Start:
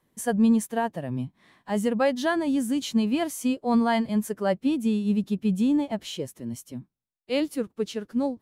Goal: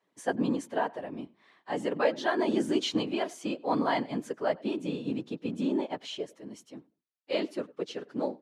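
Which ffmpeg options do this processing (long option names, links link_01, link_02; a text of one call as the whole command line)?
ffmpeg -i in.wav -filter_complex "[0:a]asettb=1/sr,asplit=3[link_01][link_02][link_03];[link_01]atrim=end=2.394[link_04];[link_02]atrim=start=2.39:end=3.03,asetpts=PTS-STARTPTS,afade=type=in:duration=0.004:curve=qsin,afade=type=out:start_time=0.636:duration=0.004:curve=qsin,acontrast=27[link_05];[link_03]atrim=start=3.026[link_06];[link_04][link_05]acrossfade=duration=0.004:curve1=hsin:curve2=qsin[link_07];[link_07][link_06]acrossfade=duration=0.004:curve1=qsin:curve2=hsin,asplit=2[link_08][link_09];[link_09]adelay=98,lowpass=frequency=2800:poles=1,volume=-23dB,asplit=2[link_10][link_11];[link_11]adelay=98,lowpass=frequency=2800:poles=1,volume=0.2[link_12];[link_10][link_12]amix=inputs=2:normalize=0[link_13];[link_08][link_13]amix=inputs=2:normalize=0,afftfilt=real='hypot(re,im)*cos(2*PI*random(0))':imag='hypot(re,im)*sin(2*PI*random(1))':win_size=512:overlap=0.75,highpass=330,lowpass=5200,volume=3.5dB" out.wav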